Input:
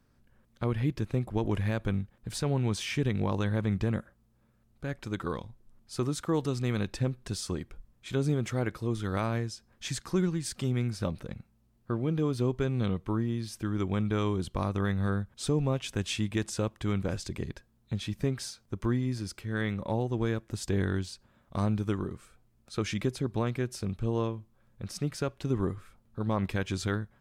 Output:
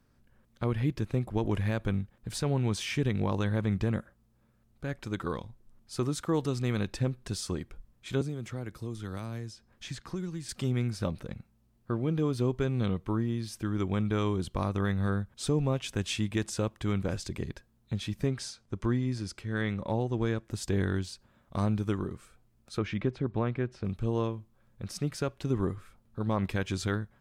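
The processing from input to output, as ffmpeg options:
-filter_complex "[0:a]asettb=1/sr,asplit=3[a][b][c];[a]atrim=end=8.214[d];[b]atrim=start=8.21:end=10.49,asetpts=PTS-STARTPTS,afade=t=in:d=0.004:c=qsin,afade=t=out:st=2.276:d=0.004:c=qsin,acrossover=split=290|4500[e][f][g];[e]acompressor=threshold=-36dB:ratio=4[h];[f]acompressor=threshold=-43dB:ratio=4[i];[g]acompressor=threshold=-54dB:ratio=4[j];[h][i][j]amix=inputs=3:normalize=0[k];[c]atrim=start=10.486[l];[d][k]acrossfade=d=0.004:c1=hsin:c2=qsin[m];[m][l]acrossfade=d=0.004:c1=qsin:c2=hsin,asettb=1/sr,asplit=3[n][o][p];[n]atrim=end=18.274[q];[o]atrim=start=18.27:end=20.45,asetpts=PTS-STARTPTS,afade=t=in:d=0.004:c=qsin,afade=t=out:st=2.176:d=0.004:c=qsin,lowpass=9.3k[r];[p]atrim=start=20.446[s];[q][r]acrossfade=d=0.004:c1=hsin:c2=qsin[t];[t][s]acrossfade=d=0.004:c1=qsin:c2=hsin,asettb=1/sr,asplit=3[u][v][w];[u]atrim=end=22.784[x];[v]atrim=start=22.78:end=23.85,asetpts=PTS-STARTPTS,afade=t=in:d=0.004:c=qsin,afade=t=out:st=1.066:d=0.004:c=qsin,lowpass=2.5k[y];[w]atrim=start=23.846[z];[x][y]acrossfade=d=0.004:c1=hsin:c2=qsin[aa];[aa][z]acrossfade=d=0.004:c1=qsin:c2=hsin"

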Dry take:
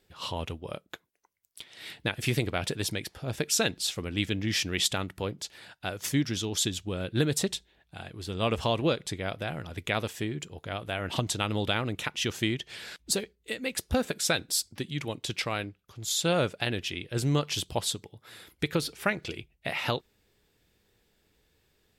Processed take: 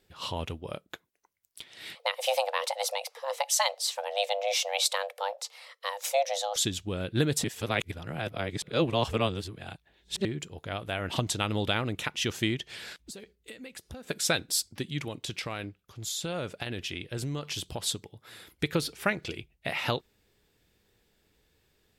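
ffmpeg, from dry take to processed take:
-filter_complex "[0:a]asettb=1/sr,asplit=3[a][b][c];[a]atrim=end=1.954[d];[b]atrim=start=1.95:end=6.56,asetpts=PTS-STARTPTS,afade=t=in:d=0.004:c=qsin,afade=t=out:st=4.606:d=0.004:c=qsin,afreqshift=400[e];[c]atrim=start=6.556[f];[d][e]acrossfade=d=0.004:c1=hsin:c2=qsin[g];[g][f]acrossfade=d=0.004:c1=qsin:c2=hsin,asplit=3[h][i][j];[h]afade=t=out:st=12.92:d=0.02[k];[i]acompressor=threshold=-41dB:ratio=6:attack=3.2:release=140:knee=1:detection=peak,afade=t=in:st=12.92:d=0.02,afade=t=out:st=14.09:d=0.02[l];[j]afade=t=in:st=14.09:d=0.02[m];[k][l][m]amix=inputs=3:normalize=0,asettb=1/sr,asplit=3[n][o][p];[n]atrim=end=14.994[q];[o]atrim=start=14.99:end=17.84,asetpts=PTS-STARTPTS,afade=t=in:d=0.004:c=qsin,afade=t=out:st=2.846:d=0.004:c=qsin,acompressor=threshold=-30dB:ratio=6:attack=3.2:release=140:knee=1:detection=peak[r];[p]atrim=start=17.836[s];[q][r]acrossfade=d=0.004:c1=hsin:c2=qsin[t];[t][s]acrossfade=d=0.004:c1=qsin:c2=hsin,asplit=3[u][v][w];[u]atrim=end=7.442[x];[v]atrim=start=7.438:end=10.252,asetpts=PTS-STARTPTS,areverse[y];[w]atrim=start=10.248[z];[x][y]acrossfade=d=0.004:c1=hsin:c2=hsin[aa];[aa][z]acrossfade=d=0.004:c1=hsin:c2=hsin"

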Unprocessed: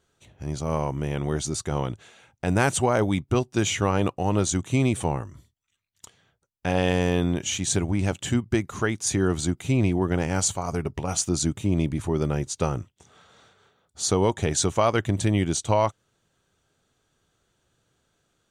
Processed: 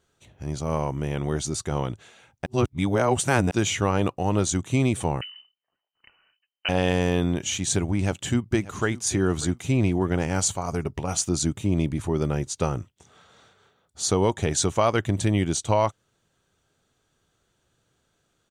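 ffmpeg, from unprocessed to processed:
-filter_complex "[0:a]asettb=1/sr,asplit=3[a][b][c];[a]atrim=end=5.214[d];[b]atrim=start=5.21:end=6.69,asetpts=PTS-STARTPTS,afade=t=in:d=0.004:c=qsin,afade=t=out:st=1.476:d=0.004:c=qsin,lowpass=f=2.6k:t=q:w=0.5098,lowpass=f=2.6k:t=q:w=0.6013,lowpass=f=2.6k:t=q:w=0.9,lowpass=f=2.6k:t=q:w=2.563,afreqshift=-3100[e];[c]atrim=start=6.686[f];[d][e]acrossfade=d=0.004:c1=hsin:c2=qsin[g];[g][f]acrossfade=d=0.004:c1=qsin:c2=hsin,asplit=2[h][i];[i]afade=t=in:st=7.92:d=0.01,afade=t=out:st=9.06:d=0.01,aecho=0:1:590|1180|1770:0.133352|0.0400056|0.0120017[j];[h][j]amix=inputs=2:normalize=0,asplit=3[k][l][m];[k]atrim=end=2.462[n];[l]atrim=start=2.458:end=3.512,asetpts=PTS-STARTPTS,areverse[o];[m]atrim=start=3.508[p];[n][o]acrossfade=d=0.004:c1=hsin:c2=hsin[q];[q][p]acrossfade=d=0.004:c1=hsin:c2=hsin"

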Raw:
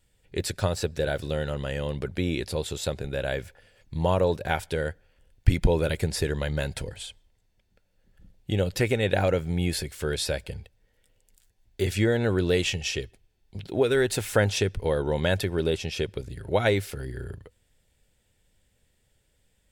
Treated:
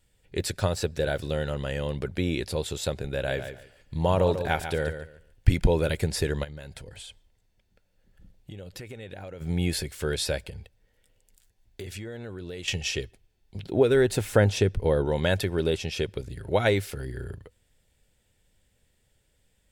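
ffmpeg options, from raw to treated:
-filter_complex "[0:a]asplit=3[a][b][c];[a]afade=t=out:st=3.27:d=0.02[d];[b]aecho=1:1:143|286|429:0.335|0.0703|0.0148,afade=t=in:st=3.27:d=0.02,afade=t=out:st=5.6:d=0.02[e];[c]afade=t=in:st=5.6:d=0.02[f];[d][e][f]amix=inputs=3:normalize=0,asplit=3[g][h][i];[g]afade=t=out:st=6.43:d=0.02[j];[h]acompressor=threshold=-39dB:ratio=5:attack=3.2:release=140:knee=1:detection=peak,afade=t=in:st=6.43:d=0.02,afade=t=out:st=9.4:d=0.02[k];[i]afade=t=in:st=9.4:d=0.02[l];[j][k][l]amix=inputs=3:normalize=0,asettb=1/sr,asplit=3[m][n][o];[m]atrim=end=10.494[p];[n]atrim=start=10.49:end=12.68,asetpts=PTS-STARTPTS,afade=t=in:d=0.004:c=qsin,afade=t=out:st=2.186:d=0.004:c=qsin,acompressor=threshold=-35dB:ratio=6:attack=3.2:release=140:knee=1:detection=peak[q];[o]atrim=start=12.676[r];[p][q]acrossfade=d=0.004:c1=hsin:c2=qsin[s];[s][r]acrossfade=d=0.004:c1=qsin:c2=hsin,asettb=1/sr,asplit=3[t][u][v];[t]atrim=end=13.664[w];[u]atrim=start=13.66:end=15.06,asetpts=PTS-STARTPTS,afade=t=in:d=0.004:c=qsin,afade=t=out:st=1.396:d=0.004:c=qsin,tiltshelf=f=920:g=3.5[x];[v]atrim=start=15.056[y];[w][x]acrossfade=d=0.004:c1=hsin:c2=qsin[z];[z][y]acrossfade=d=0.004:c1=qsin:c2=hsin"

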